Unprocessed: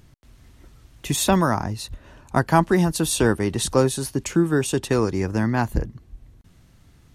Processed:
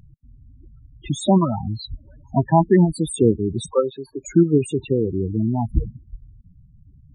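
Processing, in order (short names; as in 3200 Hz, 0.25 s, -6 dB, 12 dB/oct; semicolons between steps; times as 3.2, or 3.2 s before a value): 3.66–4.24 three-band isolator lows -16 dB, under 380 Hz, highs -14 dB, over 3500 Hz; in parallel at -1 dB: level quantiser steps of 18 dB; on the sum: loudest bins only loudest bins 8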